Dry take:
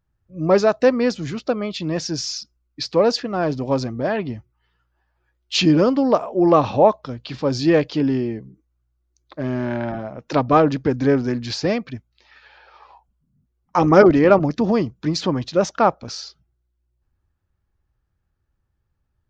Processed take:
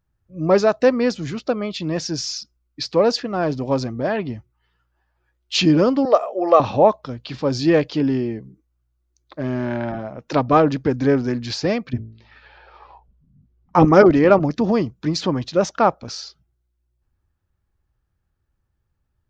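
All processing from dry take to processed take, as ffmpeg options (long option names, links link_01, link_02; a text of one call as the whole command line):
ffmpeg -i in.wav -filter_complex "[0:a]asettb=1/sr,asplit=3[link_01][link_02][link_03];[link_01]atrim=end=6.054[link_04];[link_02]atrim=start=6.05:end=6.6,asetpts=PTS-STARTPTS,afade=type=in:duration=0.004:curve=qsin,afade=type=out:start_time=0.546:duration=0.004:curve=qsin,highpass=frequency=330:width=0.5412,highpass=frequency=330:width=1.3066,equalizer=frequency=5300:width=7.2:gain=-3,aecho=1:1:1.6:0.53,atrim=end_sample=24255[link_05];[link_03]atrim=start=6.596[link_06];[link_04][link_05]acrossfade=duration=0.004:curve1=hsin:curve2=qsin[link_07];[link_07][link_06]acrossfade=duration=0.004:curve1=qsin:curve2=hsin,asettb=1/sr,asplit=3[link_08][link_09][link_10];[link_08]atrim=end=11.934[link_11];[link_09]atrim=start=11.93:end=13.85,asetpts=PTS-STARTPTS,afade=type=in:duration=0.004:curve=qsin,afade=type=out:start_time=1.916:duration=0.004:curve=qsin,lowpass=4600,lowshelf=frequency=400:gain=11.5,bandreject=frequency=55.84:width_type=h:width=4,bandreject=frequency=111.68:width_type=h:width=4,bandreject=frequency=167.52:width_type=h:width=4,bandreject=frequency=223.36:width_type=h:width=4,bandreject=frequency=279.2:width_type=h:width=4,bandreject=frequency=335.04:width_type=h:width=4,bandreject=frequency=390.88:width_type=h:width=4,bandreject=frequency=446.72:width_type=h:width=4,bandreject=frequency=502.56:width_type=h:width=4,bandreject=frequency=558.4:width_type=h:width=4,bandreject=frequency=614.24:width_type=h:width=4[link_12];[link_10]atrim=start=13.846[link_13];[link_11][link_12]acrossfade=duration=0.004:curve1=hsin:curve2=qsin[link_14];[link_14][link_13]acrossfade=duration=0.004:curve1=qsin:curve2=hsin" out.wav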